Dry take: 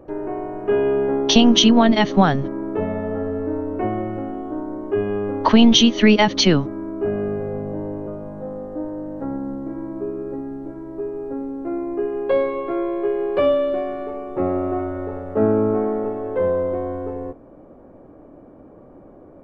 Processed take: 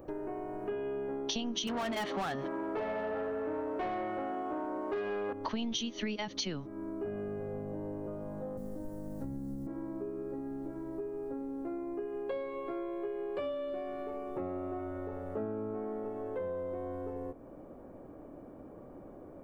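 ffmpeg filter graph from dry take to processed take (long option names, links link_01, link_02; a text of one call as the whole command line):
ffmpeg -i in.wav -filter_complex "[0:a]asettb=1/sr,asplit=3[link_01][link_02][link_03];[link_01]atrim=end=1.674[link_04];[link_02]atrim=start=1.67:end=5.33,asetpts=PTS-STARTPTS,afade=type=in:duration=0.004:curve=qsin,afade=type=out:start_time=3.656:duration=0.004:curve=qsin,acrossover=split=4200[link_05][link_06];[link_06]acompressor=threshold=-57dB:ratio=4:attack=1:release=60[link_07];[link_05][link_07]amix=inputs=2:normalize=0,lowshelf=frequency=460:gain=-9,asplit=2[link_08][link_09];[link_09]highpass=frequency=720:poles=1,volume=28dB,asoftclip=type=tanh:threshold=-4dB[link_10];[link_08][link_10]amix=inputs=2:normalize=0,lowpass=frequency=1500:poles=1,volume=-6dB[link_11];[link_03]atrim=start=5.326[link_12];[link_04][link_11]acrossfade=duration=0.004:curve1=hsin:curve2=qsin[link_13];[link_13][link_12]acrossfade=duration=0.004:curve1=qsin:curve2=hsin,asettb=1/sr,asplit=3[link_14][link_15][link_16];[link_14]atrim=end=8.574[link_17];[link_15]atrim=start=8.57:end=9.67,asetpts=PTS-STARTPTS,afade=type=in:duration=0.004:curve=qsin,afade=type=out:start_time=1.096:duration=0.004:curve=qsin,bass=frequency=250:gain=8,treble=frequency=4000:gain=11,acrossover=split=170|3000[link_18][link_19][link_20];[link_19]acompressor=threshold=-35dB:ratio=2.5:attack=3.2:release=140:knee=2.83:detection=peak[link_21];[link_18][link_21][link_20]amix=inputs=3:normalize=0,asplit=2[link_22][link_23];[link_23]adelay=15,volume=-6.5dB[link_24];[link_22][link_24]amix=inputs=2:normalize=0,atrim=end_sample=48510[link_25];[link_16]atrim=start=9.666[link_26];[link_17][link_25]acrossfade=duration=0.004:curve1=hsin:curve2=qsin[link_27];[link_27][link_26]acrossfade=duration=0.004:curve1=qsin:curve2=hsin,aemphasis=mode=production:type=50kf,acompressor=threshold=-32dB:ratio=4,volume=-5dB" out.wav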